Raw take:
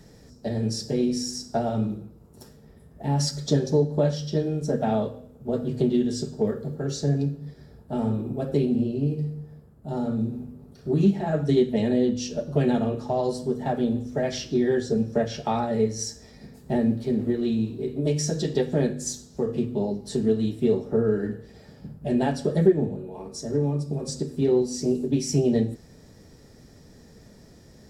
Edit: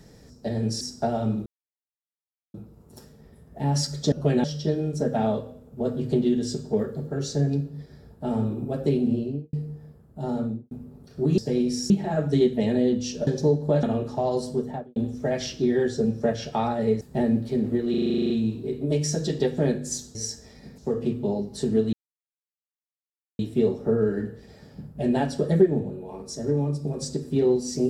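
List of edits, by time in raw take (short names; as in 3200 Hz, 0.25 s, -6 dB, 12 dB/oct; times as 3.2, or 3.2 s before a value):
0.81–1.33 move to 11.06
1.98 insert silence 1.08 s
3.56–4.12 swap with 12.43–12.75
8.87–9.21 studio fade out
10.06–10.39 studio fade out
13.5–13.88 studio fade out
15.93–16.56 move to 19.3
17.45 stutter 0.04 s, 11 plays
20.45 insert silence 1.46 s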